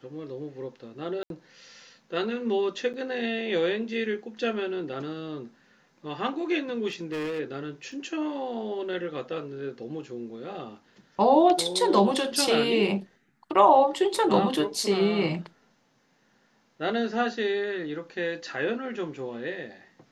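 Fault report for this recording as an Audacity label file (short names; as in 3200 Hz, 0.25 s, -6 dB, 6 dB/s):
1.230000	1.300000	gap 72 ms
2.930000	2.940000	gap 8.4 ms
6.880000	7.400000	clipped -28 dBFS
7.920000	7.920000	gap 2.5 ms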